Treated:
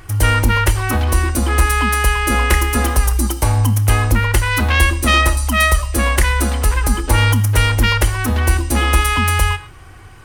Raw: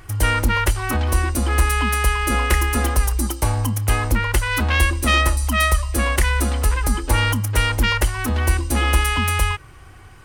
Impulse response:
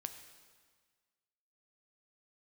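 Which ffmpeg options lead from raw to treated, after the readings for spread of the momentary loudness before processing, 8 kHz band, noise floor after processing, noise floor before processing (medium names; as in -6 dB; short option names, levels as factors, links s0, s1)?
4 LU, +4.0 dB, -38 dBFS, -43 dBFS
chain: -filter_complex "[0:a]asplit=2[s0][s1];[1:a]atrim=start_sample=2205,atrim=end_sample=6174[s2];[s1][s2]afir=irnorm=-1:irlink=0,volume=2.51[s3];[s0][s3]amix=inputs=2:normalize=0,volume=0.562"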